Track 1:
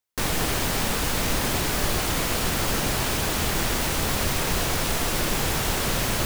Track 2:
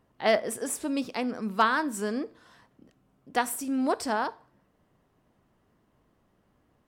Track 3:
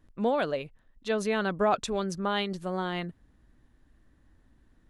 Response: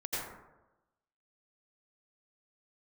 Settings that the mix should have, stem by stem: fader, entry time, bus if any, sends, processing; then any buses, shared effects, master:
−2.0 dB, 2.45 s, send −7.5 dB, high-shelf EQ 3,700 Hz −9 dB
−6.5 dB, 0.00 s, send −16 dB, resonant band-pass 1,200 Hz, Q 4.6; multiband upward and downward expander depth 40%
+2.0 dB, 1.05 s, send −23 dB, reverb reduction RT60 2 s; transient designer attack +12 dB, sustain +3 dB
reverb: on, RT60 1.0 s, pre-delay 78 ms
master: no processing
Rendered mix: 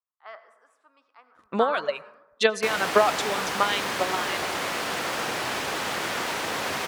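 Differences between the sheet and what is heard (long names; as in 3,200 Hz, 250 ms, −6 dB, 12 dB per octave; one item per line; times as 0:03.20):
stem 3: entry 1.05 s → 1.35 s
master: extra meter weighting curve A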